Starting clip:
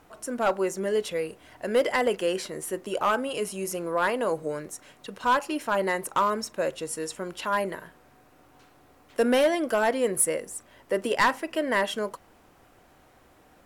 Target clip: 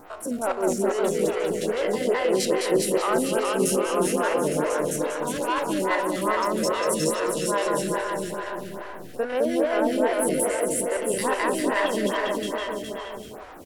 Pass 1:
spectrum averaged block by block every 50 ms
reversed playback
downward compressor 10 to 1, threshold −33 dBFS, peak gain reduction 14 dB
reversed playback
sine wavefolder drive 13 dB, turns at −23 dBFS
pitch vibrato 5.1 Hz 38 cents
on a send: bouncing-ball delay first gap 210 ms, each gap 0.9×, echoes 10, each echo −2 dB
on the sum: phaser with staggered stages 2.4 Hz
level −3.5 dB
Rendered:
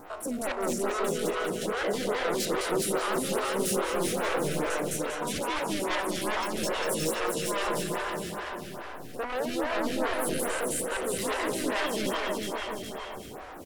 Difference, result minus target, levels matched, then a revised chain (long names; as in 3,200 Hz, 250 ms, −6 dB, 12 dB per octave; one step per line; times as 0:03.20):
sine wavefolder: distortion +19 dB
spectrum averaged block by block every 50 ms
reversed playback
downward compressor 10 to 1, threshold −33 dBFS, peak gain reduction 14 dB
reversed playback
sine wavefolder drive 13 dB, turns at −14 dBFS
pitch vibrato 5.1 Hz 38 cents
on a send: bouncing-ball delay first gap 210 ms, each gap 0.9×, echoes 10, each echo −2 dB
on the sum: phaser with staggered stages 2.4 Hz
level −3.5 dB